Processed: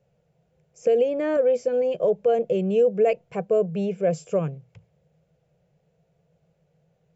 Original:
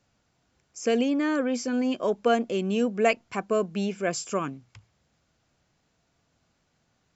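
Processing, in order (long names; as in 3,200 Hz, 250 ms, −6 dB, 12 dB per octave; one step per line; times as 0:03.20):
drawn EQ curve 110 Hz 0 dB, 160 Hz +14 dB, 260 Hz −14 dB, 490 Hz +13 dB, 1,100 Hz −10 dB, 2,600 Hz −5 dB, 4,600 Hz −13 dB, 9,900 Hz −9 dB
brickwall limiter −12.5 dBFS, peak gain reduction 10 dB
0:00.84–0:01.37: multiband upward and downward compressor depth 70%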